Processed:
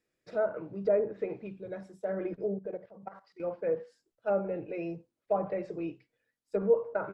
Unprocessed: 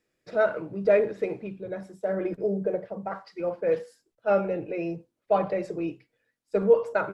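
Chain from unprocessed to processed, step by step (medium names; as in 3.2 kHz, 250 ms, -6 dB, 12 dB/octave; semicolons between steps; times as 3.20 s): 2.54–3.40 s: level held to a coarse grid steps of 15 dB; low-pass that closes with the level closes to 1 kHz, closed at -19.5 dBFS; trim -5.5 dB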